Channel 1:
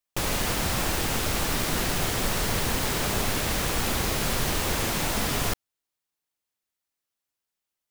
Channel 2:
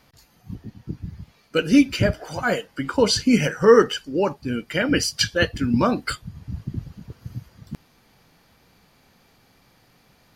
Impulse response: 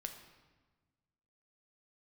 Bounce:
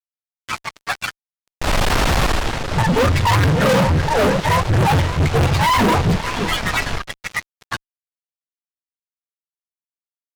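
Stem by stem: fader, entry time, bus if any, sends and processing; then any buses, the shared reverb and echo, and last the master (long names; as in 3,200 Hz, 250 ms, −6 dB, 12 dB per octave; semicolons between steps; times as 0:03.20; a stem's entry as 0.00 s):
−5.0 dB, 1.45 s, send −17 dB, no echo send, parametric band 890 Hz +5.5 dB 2.1 octaves; automatic ducking −18 dB, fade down 0.40 s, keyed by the second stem
+1.0 dB, 0.00 s, muted 0:01.12–0:02.63, send −24 dB, echo send −19 dB, frequency axis turned over on the octave scale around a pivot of 490 Hz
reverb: on, RT60 1.3 s, pre-delay 7 ms
echo: single-tap delay 571 ms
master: low-pass filter 4,800 Hz 12 dB per octave; low-shelf EQ 74 Hz +11.5 dB; fuzz pedal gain 33 dB, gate −40 dBFS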